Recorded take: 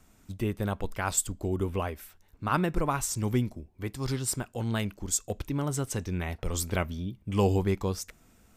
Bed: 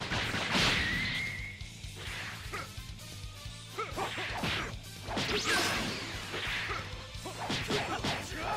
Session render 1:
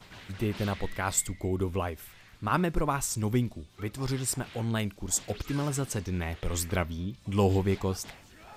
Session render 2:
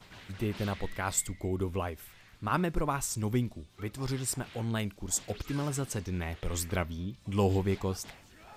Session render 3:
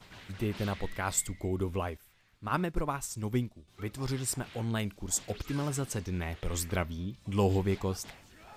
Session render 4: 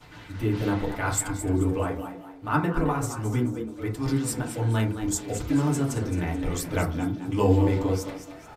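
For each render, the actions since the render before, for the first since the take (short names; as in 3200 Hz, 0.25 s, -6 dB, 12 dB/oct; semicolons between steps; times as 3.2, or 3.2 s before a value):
add bed -15.5 dB
gain -2.5 dB
1.97–3.68 upward expander, over -45 dBFS
on a send: frequency-shifting echo 0.217 s, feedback 35%, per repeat +97 Hz, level -10 dB; on the sum: FDN reverb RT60 0.37 s, low-frequency decay 1.35×, high-frequency decay 0.3×, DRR -3 dB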